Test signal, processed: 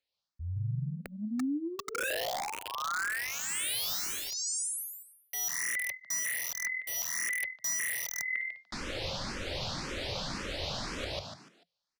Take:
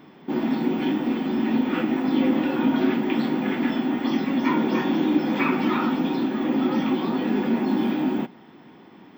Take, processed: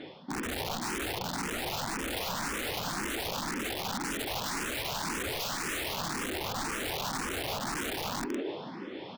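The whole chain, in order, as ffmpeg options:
-filter_complex "[0:a]volume=6.31,asoftclip=hard,volume=0.158,lowpass=f=4500:t=q:w=2.4,equalizer=f=530:t=o:w=0.23:g=9,asplit=2[s0][s1];[s1]asplit=4[s2][s3][s4][s5];[s2]adelay=147,afreqshift=41,volume=0.562[s6];[s3]adelay=294,afreqshift=82,volume=0.202[s7];[s4]adelay=441,afreqshift=123,volume=0.0733[s8];[s5]adelay=588,afreqshift=164,volume=0.0263[s9];[s6][s7][s8][s9]amix=inputs=4:normalize=0[s10];[s0][s10]amix=inputs=2:normalize=0,acontrast=83,aeval=exprs='(mod(3.98*val(0)+1,2)-1)/3.98':c=same,areverse,acompressor=threshold=0.0316:ratio=10,areverse,asplit=2[s11][s12];[s12]afreqshift=1.9[s13];[s11][s13]amix=inputs=2:normalize=1"

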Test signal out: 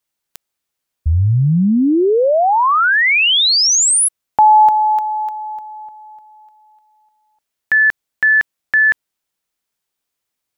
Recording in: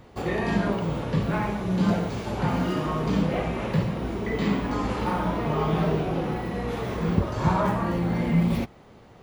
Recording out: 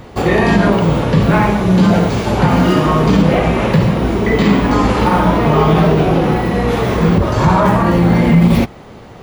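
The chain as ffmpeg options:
-af "alimiter=level_in=5.96:limit=0.891:release=50:level=0:latency=1,volume=0.891"

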